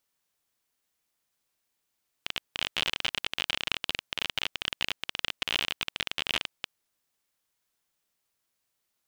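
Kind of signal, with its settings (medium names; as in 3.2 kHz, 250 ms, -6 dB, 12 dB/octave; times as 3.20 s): random clicks 35 per s -11.5 dBFS 4.52 s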